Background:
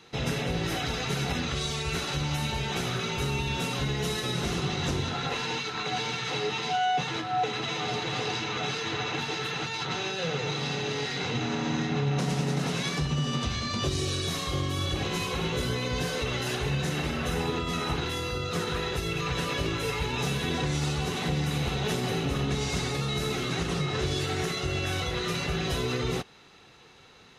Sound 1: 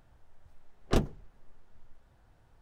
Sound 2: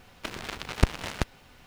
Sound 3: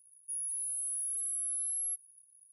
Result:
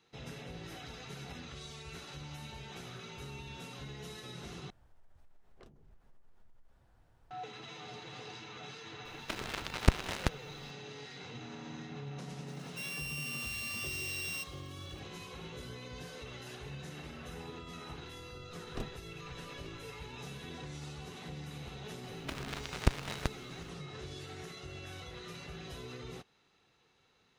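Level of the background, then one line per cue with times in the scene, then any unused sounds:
background -16.5 dB
4.7 replace with 1 -3.5 dB + compressor 10:1, threshold -50 dBFS
9.05 add 2 -3 dB
12.48 add 3 -4.5 dB + sample sorter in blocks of 16 samples
17.84 add 1 -14.5 dB
22.04 add 2 -6 dB

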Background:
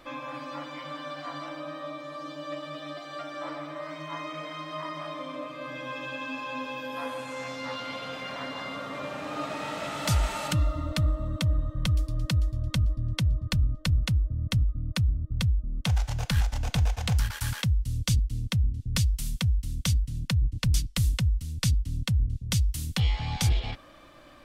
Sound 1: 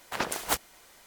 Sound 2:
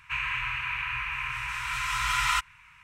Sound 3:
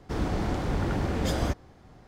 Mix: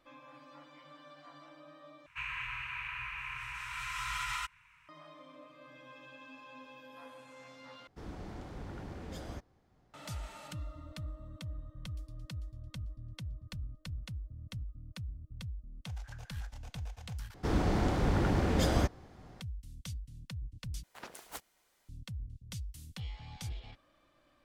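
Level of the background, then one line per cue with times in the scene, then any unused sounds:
background -17 dB
2.06 replace with 2 -9 dB + limiter -18 dBFS
7.87 replace with 3 -16.5 dB
15.92 add 1 -14.5 dB + band-pass 1600 Hz, Q 15
17.34 replace with 3 -1 dB
20.83 replace with 1 -17.5 dB

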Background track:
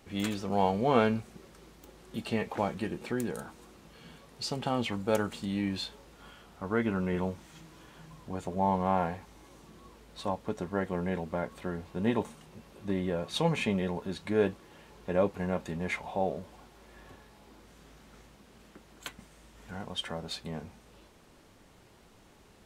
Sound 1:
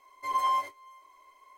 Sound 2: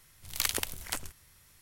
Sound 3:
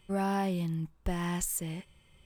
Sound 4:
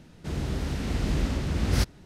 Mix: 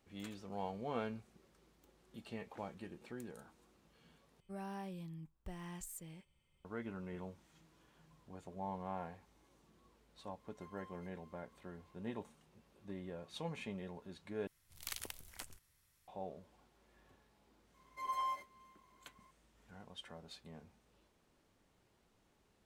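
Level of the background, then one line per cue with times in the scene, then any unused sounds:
background track -15.5 dB
4.4 replace with 3 -15.5 dB
10.38 add 1 -17 dB + compressor 4:1, threshold -43 dBFS
14.47 replace with 2 -14.5 dB
17.74 add 1 -11.5 dB
not used: 4

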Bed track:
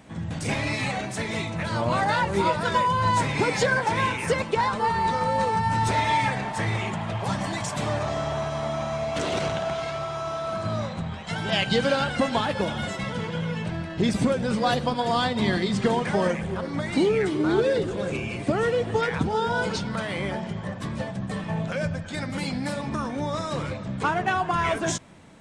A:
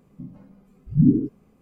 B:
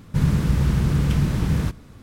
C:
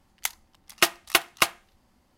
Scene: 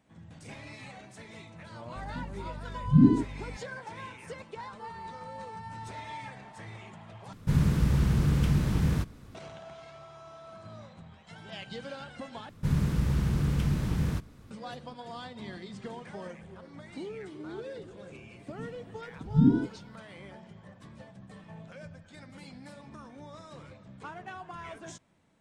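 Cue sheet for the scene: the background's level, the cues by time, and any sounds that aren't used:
bed track -18.5 dB
1.96 add A -2.5 dB + hum 50 Hz, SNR 15 dB
7.33 replace with B -5 dB
12.49 replace with B -7.5 dB
18.39 add A -5 dB
not used: C

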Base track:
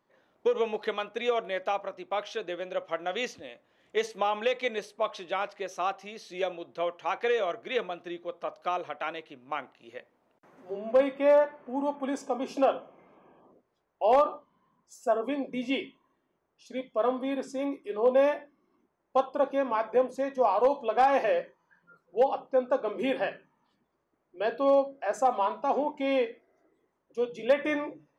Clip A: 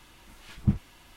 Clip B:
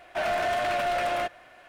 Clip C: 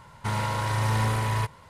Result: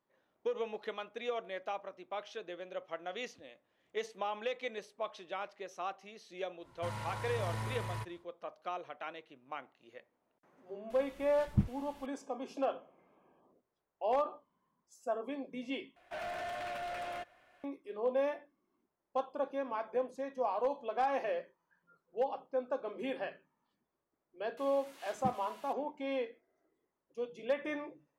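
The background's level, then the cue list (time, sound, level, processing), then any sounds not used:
base track -9.5 dB
6.58 add C -14 dB, fades 0.10 s
10.9 add A -5.5 dB
15.96 replace with B -13.5 dB
24.57 add A -2.5 dB + HPF 340 Hz

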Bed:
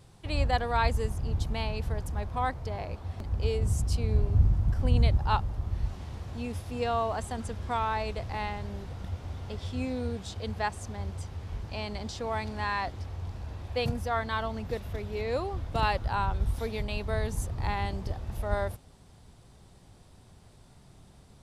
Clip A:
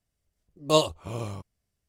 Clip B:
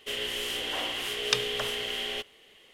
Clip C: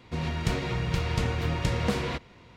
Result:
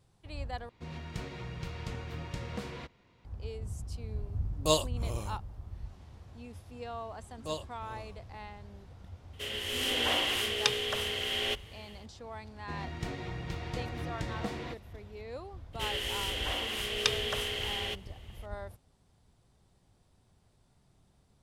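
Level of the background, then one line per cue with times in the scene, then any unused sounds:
bed -12 dB
0.69 replace with C -12 dB
3.96 add A -6.5 dB + high shelf 5700 Hz +10.5 dB
6.76 add A -16 dB
9.33 add B -5.5 dB + AGC gain up to 9 dB
12.56 add C -11 dB + small resonant body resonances 320/730/1900/3600 Hz, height 8 dB
15.73 add B -2.5 dB

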